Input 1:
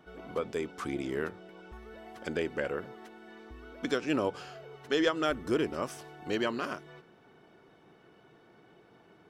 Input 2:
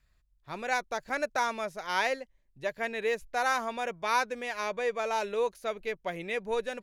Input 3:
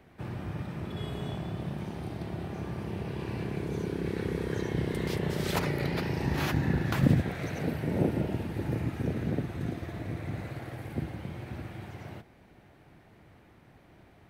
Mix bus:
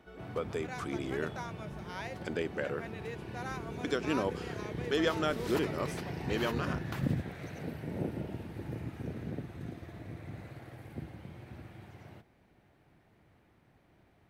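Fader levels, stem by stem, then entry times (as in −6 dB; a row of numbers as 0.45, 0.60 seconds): −2.5, −14.0, −8.5 decibels; 0.00, 0.00, 0.00 seconds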